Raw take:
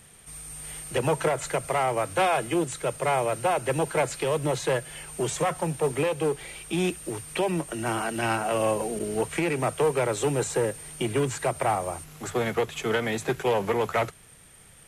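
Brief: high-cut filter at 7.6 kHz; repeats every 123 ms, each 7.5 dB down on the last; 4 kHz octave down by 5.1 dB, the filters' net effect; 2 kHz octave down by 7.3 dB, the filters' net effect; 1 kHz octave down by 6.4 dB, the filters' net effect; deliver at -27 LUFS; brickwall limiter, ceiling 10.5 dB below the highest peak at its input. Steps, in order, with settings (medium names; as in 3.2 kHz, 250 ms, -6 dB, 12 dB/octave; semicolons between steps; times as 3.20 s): low-pass 7.6 kHz; peaking EQ 1 kHz -8 dB; peaking EQ 2 kHz -6 dB; peaking EQ 4 kHz -3.5 dB; peak limiter -26.5 dBFS; feedback delay 123 ms, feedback 42%, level -7.5 dB; trim +8.5 dB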